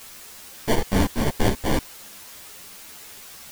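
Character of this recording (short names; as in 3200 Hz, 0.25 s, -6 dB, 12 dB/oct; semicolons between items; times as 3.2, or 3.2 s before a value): aliases and images of a low sample rate 1300 Hz, jitter 0%; tremolo saw up 2.7 Hz, depth 60%; a quantiser's noise floor 8-bit, dither triangular; a shimmering, thickened sound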